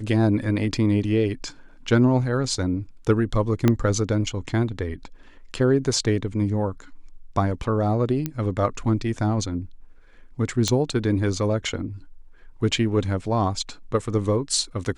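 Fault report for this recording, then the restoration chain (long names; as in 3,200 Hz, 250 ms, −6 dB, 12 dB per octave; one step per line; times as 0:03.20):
0:03.68: click −6 dBFS
0:08.26: click −12 dBFS
0:10.68: click −8 dBFS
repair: click removal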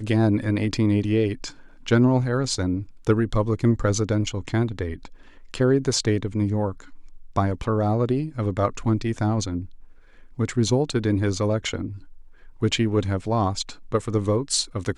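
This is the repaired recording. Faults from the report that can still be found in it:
0:03.68: click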